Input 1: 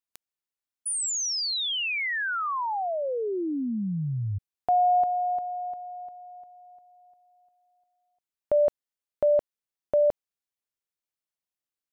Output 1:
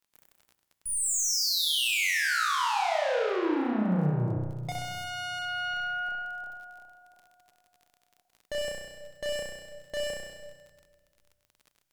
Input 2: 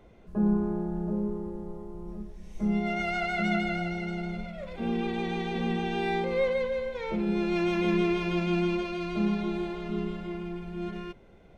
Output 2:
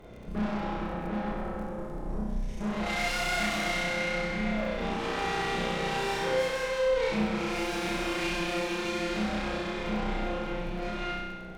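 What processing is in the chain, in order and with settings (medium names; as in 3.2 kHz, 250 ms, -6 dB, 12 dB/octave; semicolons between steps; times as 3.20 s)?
valve stage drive 40 dB, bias 0.6; on a send: flutter echo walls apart 5.6 m, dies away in 1.2 s; on the sum: simulated room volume 1700 m³, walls mixed, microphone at 0.65 m; crackle 35 per s -52 dBFS; loudspeaker Doppler distortion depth 0.13 ms; trim +8 dB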